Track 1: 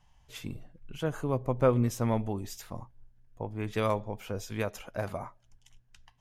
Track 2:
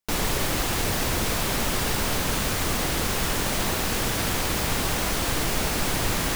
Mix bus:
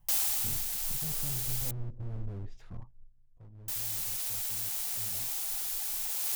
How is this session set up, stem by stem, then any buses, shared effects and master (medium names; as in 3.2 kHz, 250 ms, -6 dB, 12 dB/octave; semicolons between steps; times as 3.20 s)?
2.70 s -7.5 dB -> 3.40 s -18.5 dB -> 4.85 s -18.5 dB -> 5.51 s -9.5 dB, 0.00 s, no send, low-pass that closes with the level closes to 490 Hz, closed at -27 dBFS; tilt EQ -4 dB/octave; slew-rate limiter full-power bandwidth 7 Hz
+1.0 dB, 0.00 s, muted 1.71–3.68 s, no send, pre-emphasis filter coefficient 0.9; ring modulator 800 Hz; auto duck -9 dB, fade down 0.65 s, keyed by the first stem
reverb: none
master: tilt EQ +1.5 dB/octave